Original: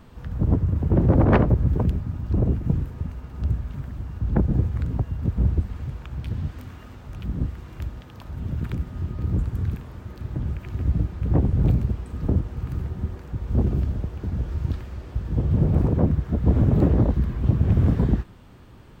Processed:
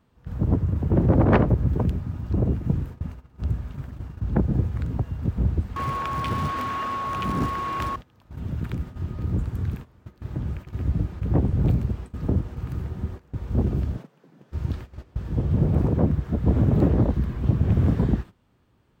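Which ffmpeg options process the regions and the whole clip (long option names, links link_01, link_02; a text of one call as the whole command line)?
ffmpeg -i in.wav -filter_complex "[0:a]asettb=1/sr,asplit=3[link_01][link_02][link_03];[link_01]atrim=end=5.764[link_04];[link_02]atrim=start=5.76:end=7.96,asetpts=PTS-STARTPTS,afade=type=in:duration=0.004:curve=qsin,afade=type=out:start_time=2.196:duration=0.004:curve=qsin,aeval=exprs='val(0)+0.00794*sin(2*PI*1100*n/s)':channel_layout=same,acrusher=bits=8:mode=log:mix=0:aa=0.000001,asplit=2[link_05][link_06];[link_06]highpass=frequency=720:poles=1,volume=24dB,asoftclip=type=tanh:threshold=-13dB[link_07];[link_05][link_07]amix=inputs=2:normalize=0,lowpass=frequency=2800:poles=1,volume=-6dB[link_08];[link_03]atrim=start=7.956[link_09];[link_04][link_08]acrossfade=duration=0.004:curve1=hsin:curve2=qsin[link_10];[link_10][link_09]acrossfade=duration=0.004:curve1=qsin:curve2=hsin,asettb=1/sr,asplit=3[link_11][link_12][link_13];[link_11]atrim=end=13.974[link_14];[link_12]atrim=start=13.97:end=14.52,asetpts=PTS-STARTPTS,afade=type=in:duration=0.004:curve=qsin,afade=type=out:start_time=0.546:duration=0.004:curve=qsin,highpass=frequency=450:poles=1,afreqshift=77[link_15];[link_13]atrim=start=14.516[link_16];[link_14][link_15]acrossfade=duration=0.004:curve1=hsin:curve2=qsin[link_17];[link_17][link_16]acrossfade=duration=0.004:curve1=qsin:curve2=hsin,highpass=frequency=59:poles=1,agate=range=-15dB:threshold=-34dB:ratio=16:detection=peak" out.wav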